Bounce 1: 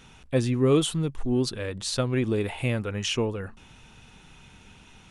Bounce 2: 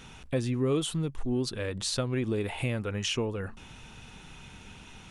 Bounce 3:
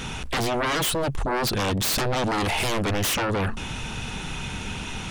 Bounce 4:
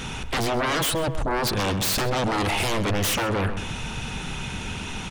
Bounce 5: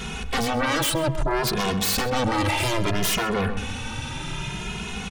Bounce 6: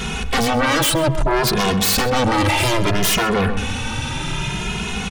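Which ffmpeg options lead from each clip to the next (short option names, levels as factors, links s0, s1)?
-af "acompressor=threshold=0.0178:ratio=2,volume=1.41"
-af "aeval=exprs='0.133*sin(PI/2*6.31*val(0)/0.133)':c=same,volume=0.668"
-filter_complex "[0:a]asplit=2[s0][s1];[s1]adelay=130,lowpass=f=2700:p=1,volume=0.335,asplit=2[s2][s3];[s3]adelay=130,lowpass=f=2700:p=1,volume=0.27,asplit=2[s4][s5];[s5]adelay=130,lowpass=f=2700:p=1,volume=0.27[s6];[s0][s2][s4][s6]amix=inputs=4:normalize=0"
-filter_complex "[0:a]asplit=2[s0][s1];[s1]adelay=2.4,afreqshift=0.62[s2];[s0][s2]amix=inputs=2:normalize=1,volume=1.5"
-af "asoftclip=type=tanh:threshold=0.141,volume=2.37"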